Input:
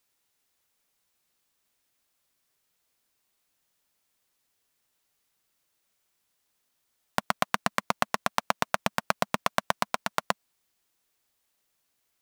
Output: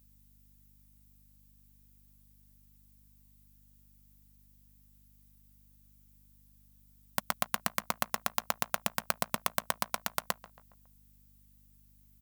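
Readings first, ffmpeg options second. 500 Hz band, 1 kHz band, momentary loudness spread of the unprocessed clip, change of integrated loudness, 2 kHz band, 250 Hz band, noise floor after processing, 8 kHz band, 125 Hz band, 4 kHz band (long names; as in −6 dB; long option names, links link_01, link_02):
−7.5 dB, −7.0 dB, 5 LU, −4.0 dB, −6.5 dB, −7.5 dB, −62 dBFS, +1.0 dB, −6.5 dB, −4.0 dB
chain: -filter_complex "[0:a]asplit=2[link_01][link_02];[link_02]adelay=138,lowpass=frequency=2200:poles=1,volume=-19dB,asplit=2[link_03][link_04];[link_04]adelay=138,lowpass=frequency=2200:poles=1,volume=0.52,asplit=2[link_05][link_06];[link_06]adelay=138,lowpass=frequency=2200:poles=1,volume=0.52,asplit=2[link_07][link_08];[link_08]adelay=138,lowpass=frequency=2200:poles=1,volume=0.52[link_09];[link_03][link_05][link_07][link_09]amix=inputs=4:normalize=0[link_10];[link_01][link_10]amix=inputs=2:normalize=0,apsyclip=5.5dB,aeval=exprs='val(0)+0.00316*(sin(2*PI*50*n/s)+sin(2*PI*2*50*n/s)/2+sin(2*PI*3*50*n/s)/3+sin(2*PI*4*50*n/s)/4+sin(2*PI*5*50*n/s)/5)':channel_layout=same,aemphasis=mode=production:type=50fm,volume=-12dB"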